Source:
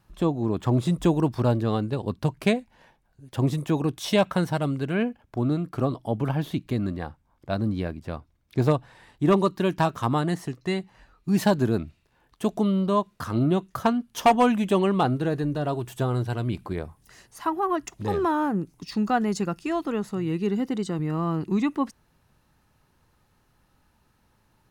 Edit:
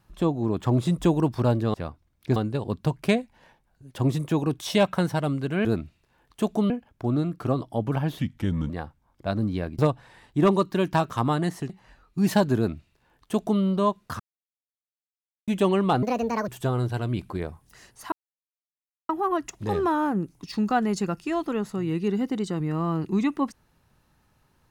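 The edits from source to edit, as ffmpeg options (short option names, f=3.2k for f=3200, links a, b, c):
-filter_complex "[0:a]asplit=14[a][b][c][d][e][f][g][h][i][j][k][l][m][n];[a]atrim=end=1.742[o];[b]atrim=start=8.018:end=8.642[p];[c]atrim=start=1.738:end=5.032[q];[d]atrim=start=11.668:end=12.722[r];[e]atrim=start=5.028:end=6.524[s];[f]atrim=start=6.52:end=6.93,asetpts=PTS-STARTPTS,asetrate=35721,aresample=44100,atrim=end_sample=22322,asetpts=PTS-STARTPTS[t];[g]atrim=start=6.926:end=8.022[u];[h]atrim=start=8.638:end=10.552[v];[i]atrim=start=10.798:end=13.3,asetpts=PTS-STARTPTS,afade=t=out:st=2.498:d=0.004:c=hsin[w];[j]atrim=start=13.3:end=14.58,asetpts=PTS-STARTPTS,volume=0[x];[k]atrim=start=14.58:end=15.134,asetpts=PTS-STARTPTS,afade=t=in:d=0.004:c=hsin[y];[l]atrim=start=15.13:end=15.84,asetpts=PTS-STARTPTS,asetrate=68796,aresample=44100,atrim=end_sample=20071,asetpts=PTS-STARTPTS[z];[m]atrim=start=15.836:end=17.48,asetpts=PTS-STARTPTS,afade=t=out:st=1.64:d=0.004:c=hsin,apad=pad_dur=0.97[aa];[n]atrim=start=17.48,asetpts=PTS-STARTPTS,afade=t=in:d=0.004:c=hsin[ab];[o][p]acrossfade=d=0.004:c1=hsin:c2=hsin[ac];[ac][q]acrossfade=d=0.004:c1=hsin:c2=hsin[ad];[ad][r]acrossfade=d=0.004:c1=hsin:c2=hsin[ae];[ae][s]acrossfade=d=0.004:c1=hsin:c2=hsin[af];[af][t]acrossfade=d=0.004:c1=hsin:c2=hsin[ag];[ag][u]acrossfade=d=0.004:c1=hsin:c2=hsin[ah];[ah][v]acrossfade=d=0.004:c1=hsin:c2=hsin[ai];[w][x][y]concat=n=3:v=0:a=1[aj];[ai][aj]acrossfade=d=0.004:c1=hsin:c2=hsin[ak];[ak][z]acrossfade=d=0.004:c1=hsin:c2=hsin[al];[aa][ab]concat=n=2:v=0:a=1[am];[al][am]acrossfade=d=0.004:c1=hsin:c2=hsin"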